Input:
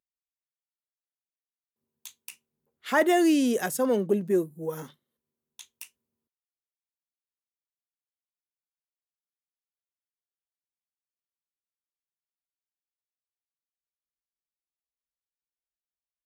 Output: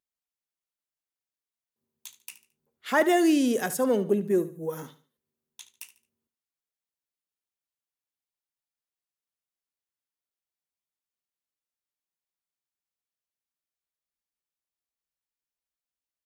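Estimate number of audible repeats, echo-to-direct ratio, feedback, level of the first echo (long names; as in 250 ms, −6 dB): 2, −14.5 dB, 31%, −15.0 dB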